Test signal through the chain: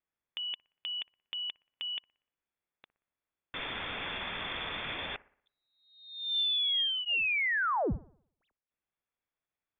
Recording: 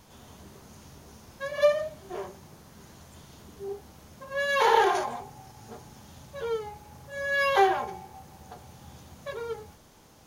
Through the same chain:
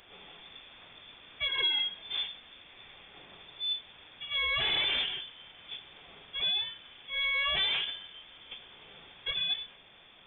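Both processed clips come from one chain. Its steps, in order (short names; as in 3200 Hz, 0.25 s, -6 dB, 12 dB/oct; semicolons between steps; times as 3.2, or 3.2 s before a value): steep high-pass 370 Hz 36 dB/oct; bell 840 Hz -10 dB 0.7 oct; notch 980 Hz, Q 6.7; in parallel at +1 dB: negative-ratio compressor -33 dBFS, ratio -0.5; on the sum: soft clip -20.5 dBFS; thin delay 60 ms, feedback 48%, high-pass 1900 Hz, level -20 dB; inverted band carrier 3900 Hz; gain -2.5 dB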